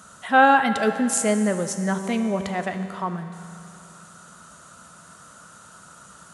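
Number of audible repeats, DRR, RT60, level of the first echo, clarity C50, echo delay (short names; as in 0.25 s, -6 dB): none, 7.5 dB, 2.7 s, none, 8.5 dB, none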